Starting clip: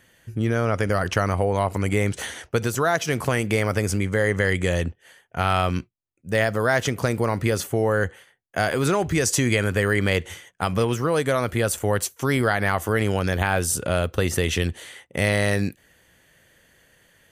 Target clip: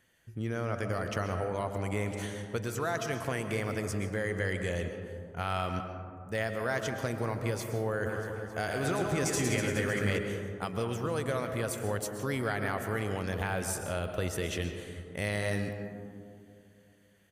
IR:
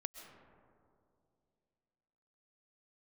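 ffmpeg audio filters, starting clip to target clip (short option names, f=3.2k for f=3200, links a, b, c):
-filter_complex "[0:a]asplit=3[a][b][c];[a]afade=t=out:st=8.05:d=0.02[d];[b]aecho=1:1:110|247.5|419.4|634.2|902.8:0.631|0.398|0.251|0.158|0.1,afade=t=in:st=8.05:d=0.02,afade=t=out:st=10.17:d=0.02[e];[c]afade=t=in:st=10.17:d=0.02[f];[d][e][f]amix=inputs=3:normalize=0[g];[1:a]atrim=start_sample=2205[h];[g][h]afir=irnorm=-1:irlink=0,volume=-8dB"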